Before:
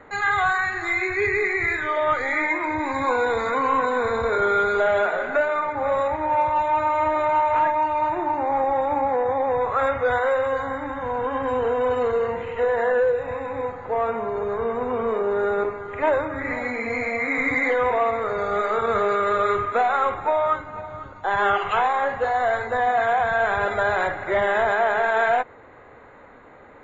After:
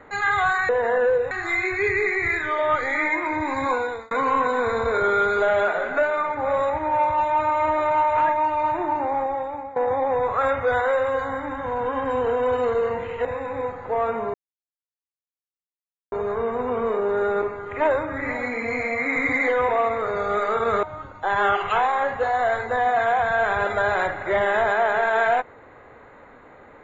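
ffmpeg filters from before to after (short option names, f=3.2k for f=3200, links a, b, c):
-filter_complex "[0:a]asplit=8[a][b][c][d][e][f][g][h];[a]atrim=end=0.692[i];[b]atrim=start=12.628:end=13.252[j];[c]atrim=start=0.688:end=3.49,asetpts=PTS-STARTPTS,afade=t=out:st=2.362:d=0.44[k];[d]atrim=start=3.49:end=9.14,asetpts=PTS-STARTPTS,afade=t=in:d=0.004:c=hsin,afade=t=out:st=4.88:d=0.77:silence=0.125893[l];[e]atrim=start=9.14:end=12.632,asetpts=PTS-STARTPTS,afade=t=in:d=0.004:c=hsin:silence=0.125893[m];[f]atrim=start=13.248:end=14.34,asetpts=PTS-STARTPTS,afade=t=out:st=1.088:d=0.004:c=hsin,apad=pad_dur=1.78[n];[g]atrim=start=14.34:end=19.052,asetpts=PTS-STARTPTS,afade=t=in:d=0.004:c=hsin[o];[h]atrim=start=20.838[p];[i][j]acrossfade=d=0.004:c1=hsin:c2=hsin[q];[k][l][m]concat=n=3:v=0:a=1[r];[q][r]acrossfade=d=0.004:c1=hsin:c2=hsin[s];[n][o]concat=n=2:v=0:a=1[t];[s][t]acrossfade=d=0.004:c1=hsin:c2=hsin[u];[u][p]acrossfade=d=0.004:c1=hsin:c2=hsin"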